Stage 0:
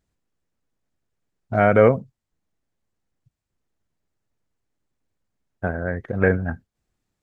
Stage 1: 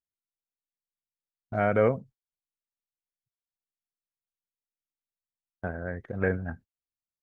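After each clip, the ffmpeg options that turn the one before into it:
-af "agate=range=0.0794:threshold=0.0112:ratio=16:detection=peak,volume=0.376"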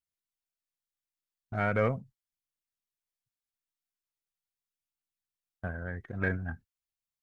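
-af "equalizer=f=500:t=o:w=1.5:g=-8,aeval=exprs='0.188*(cos(1*acos(clip(val(0)/0.188,-1,1)))-cos(1*PI/2))+0.00376*(cos(6*acos(clip(val(0)/0.188,-1,1)))-cos(6*PI/2))':c=same,aphaser=in_gain=1:out_gain=1:delay=3.2:decay=0.25:speed=0.4:type=triangular"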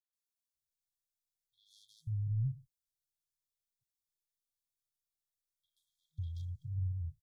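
-filter_complex "[0:a]aeval=exprs='0.188*(cos(1*acos(clip(val(0)/0.188,-1,1)))-cos(1*PI/2))+0.00266*(cos(7*acos(clip(val(0)/0.188,-1,1)))-cos(7*PI/2))':c=same,acrossover=split=760|3200[s0][s1][s2];[s2]adelay=130[s3];[s0]adelay=550[s4];[s4][s1][s3]amix=inputs=3:normalize=0,afftfilt=real='re*(1-between(b*sr/4096,160,3200))':imag='im*(1-between(b*sr/4096,160,3200))':win_size=4096:overlap=0.75,volume=1.12"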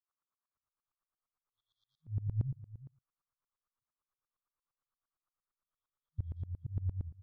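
-af "lowpass=f=1200:t=q:w=4.9,aecho=1:1:365:0.141,aeval=exprs='val(0)*pow(10,-24*if(lt(mod(-8.7*n/s,1),2*abs(-8.7)/1000),1-mod(-8.7*n/s,1)/(2*abs(-8.7)/1000),(mod(-8.7*n/s,1)-2*abs(-8.7)/1000)/(1-2*abs(-8.7)/1000))/20)':c=same,volume=2.24"

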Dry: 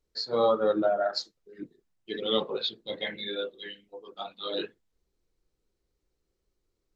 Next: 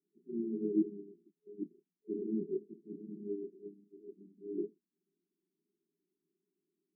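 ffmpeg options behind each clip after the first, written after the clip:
-af "afftfilt=real='re*between(b*sr/4096,160,420)':imag='im*between(b*sr/4096,160,420)':win_size=4096:overlap=0.75"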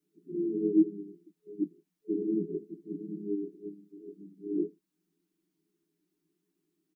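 -filter_complex "[0:a]aecho=1:1:6.5:1,asplit=2[s0][s1];[s1]alimiter=level_in=1.33:limit=0.0631:level=0:latency=1:release=273,volume=0.75,volume=0.75[s2];[s0][s2]amix=inputs=2:normalize=0"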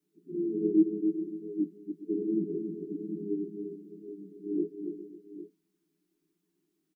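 -af "aecho=1:1:279|406|546|804:0.473|0.188|0.112|0.211"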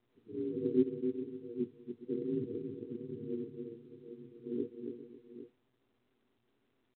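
-af "aeval=exprs='val(0)*sin(2*PI*60*n/s)':c=same,volume=0.708" -ar 8000 -c:a pcm_mulaw

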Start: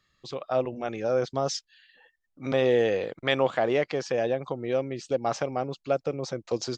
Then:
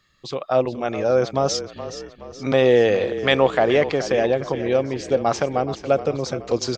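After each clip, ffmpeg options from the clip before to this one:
-filter_complex "[0:a]asplit=6[s0][s1][s2][s3][s4][s5];[s1]adelay=422,afreqshift=-31,volume=0.237[s6];[s2]adelay=844,afreqshift=-62,volume=0.119[s7];[s3]adelay=1266,afreqshift=-93,volume=0.0596[s8];[s4]adelay=1688,afreqshift=-124,volume=0.0295[s9];[s5]adelay=2110,afreqshift=-155,volume=0.0148[s10];[s0][s6][s7][s8][s9][s10]amix=inputs=6:normalize=0,volume=2.24"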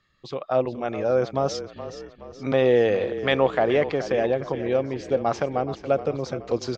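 -af "aemphasis=mode=reproduction:type=50fm,volume=0.668"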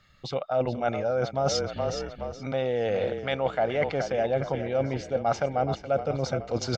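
-af "areverse,acompressor=threshold=0.0316:ratio=10,areverse,aecho=1:1:1.4:0.51,volume=2.24"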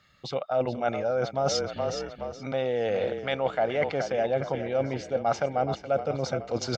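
-af "highpass=f=130:p=1"

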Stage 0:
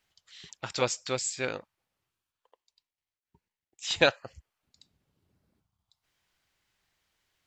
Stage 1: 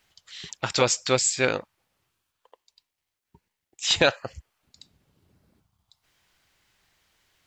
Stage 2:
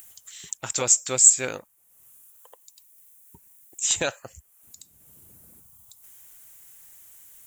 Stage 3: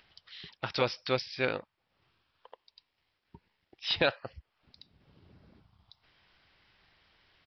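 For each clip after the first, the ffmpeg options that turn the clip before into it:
-af "alimiter=level_in=5.31:limit=0.891:release=50:level=0:latency=1,volume=0.531"
-af "aexciter=amount=14.9:drive=4.3:freq=6900,acompressor=mode=upward:threshold=0.0251:ratio=2.5,volume=0.447"
-af "aresample=11025,aresample=44100"

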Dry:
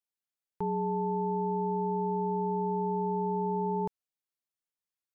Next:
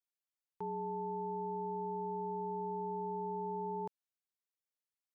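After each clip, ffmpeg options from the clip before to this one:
-af "highpass=f=290:p=1,volume=0.473"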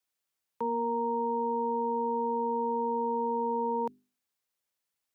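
-af "afreqshift=51,bandreject=f=50:t=h:w=6,bandreject=f=100:t=h:w=6,bandreject=f=150:t=h:w=6,bandreject=f=200:t=h:w=6,bandreject=f=250:t=h:w=6,bandreject=f=300:t=h:w=6,bandreject=f=350:t=h:w=6,bandreject=f=400:t=h:w=6,volume=2.82"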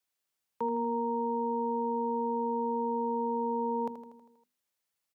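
-af "aecho=1:1:80|160|240|320|400|480|560:0.316|0.19|0.114|0.0683|0.041|0.0246|0.0148"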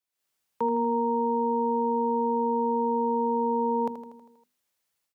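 -af "dynaudnorm=f=120:g=3:m=3.35,volume=0.562"

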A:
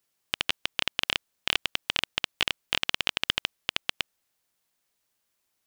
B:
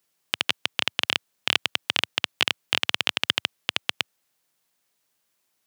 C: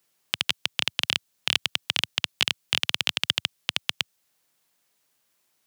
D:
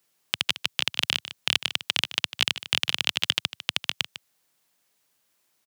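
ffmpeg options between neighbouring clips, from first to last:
-af "highpass=f=100:w=0.5412,highpass=f=100:w=1.3066,volume=1.5"
-filter_complex "[0:a]acrossover=split=170|3000[s0][s1][s2];[s1]acompressor=threshold=0.00631:ratio=1.5[s3];[s0][s3][s2]amix=inputs=3:normalize=0,volume=1.33"
-af "aecho=1:1:151:0.211"

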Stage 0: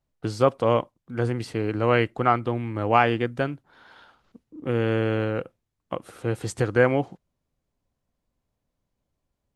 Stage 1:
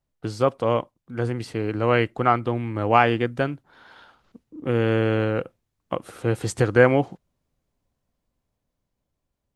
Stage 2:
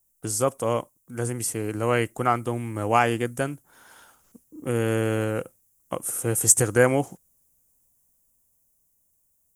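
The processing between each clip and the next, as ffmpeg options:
-af "dynaudnorm=f=420:g=9:m=3.76,volume=0.891"
-af "aexciter=amount=12.5:drive=8.2:freq=6400,volume=0.708"

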